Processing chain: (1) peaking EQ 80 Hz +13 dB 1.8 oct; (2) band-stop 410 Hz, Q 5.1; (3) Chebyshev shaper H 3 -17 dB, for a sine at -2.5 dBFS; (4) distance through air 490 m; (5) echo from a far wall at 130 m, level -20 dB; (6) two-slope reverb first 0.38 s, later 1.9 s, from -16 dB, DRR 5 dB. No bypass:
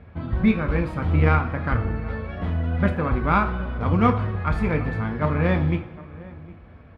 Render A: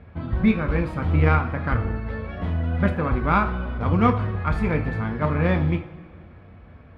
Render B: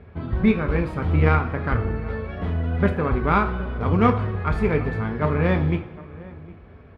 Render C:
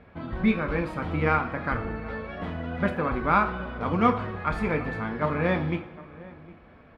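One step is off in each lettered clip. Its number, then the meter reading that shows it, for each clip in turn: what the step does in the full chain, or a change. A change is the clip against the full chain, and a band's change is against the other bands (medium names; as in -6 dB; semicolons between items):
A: 5, momentary loudness spread change -2 LU; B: 2, 500 Hz band +2.5 dB; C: 1, 125 Hz band -8.0 dB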